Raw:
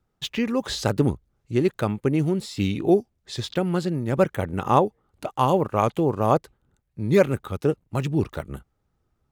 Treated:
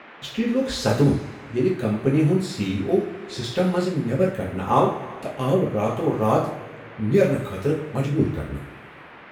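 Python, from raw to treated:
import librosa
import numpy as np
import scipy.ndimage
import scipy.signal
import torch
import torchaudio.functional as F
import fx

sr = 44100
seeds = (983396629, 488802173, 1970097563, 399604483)

y = fx.rev_double_slope(x, sr, seeds[0], early_s=0.43, late_s=2.3, knee_db=-18, drr_db=-4.5)
y = fx.rotary(y, sr, hz=0.75)
y = fx.dmg_noise_band(y, sr, seeds[1], low_hz=180.0, high_hz=2300.0, level_db=-42.0)
y = y * librosa.db_to_amplitude(-2.5)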